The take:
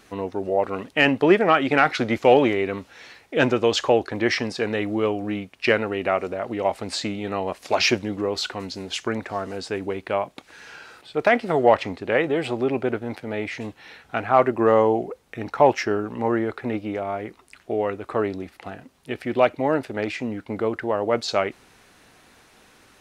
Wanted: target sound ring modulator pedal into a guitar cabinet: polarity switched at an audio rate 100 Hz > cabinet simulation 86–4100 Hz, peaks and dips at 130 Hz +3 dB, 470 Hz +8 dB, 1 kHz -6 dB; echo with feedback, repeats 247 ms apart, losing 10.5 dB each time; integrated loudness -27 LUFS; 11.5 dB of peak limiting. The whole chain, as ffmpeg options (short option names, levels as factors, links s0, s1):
-af "alimiter=limit=0.168:level=0:latency=1,aecho=1:1:247|494|741:0.299|0.0896|0.0269,aeval=exprs='val(0)*sgn(sin(2*PI*100*n/s))':c=same,highpass=86,equalizer=f=130:t=q:w=4:g=3,equalizer=f=470:t=q:w=4:g=8,equalizer=f=1000:t=q:w=4:g=-6,lowpass=f=4100:w=0.5412,lowpass=f=4100:w=1.3066,volume=0.891"